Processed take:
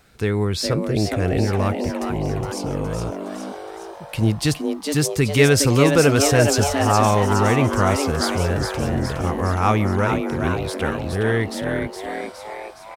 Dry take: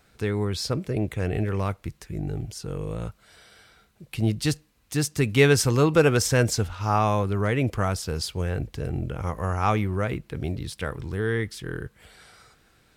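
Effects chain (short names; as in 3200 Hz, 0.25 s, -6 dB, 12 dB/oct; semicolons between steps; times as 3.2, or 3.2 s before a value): in parallel at 0 dB: limiter -13.5 dBFS, peak gain reduction 8 dB; on the sum: frequency-shifting echo 0.415 s, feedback 58%, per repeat +140 Hz, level -6 dB; gain -1 dB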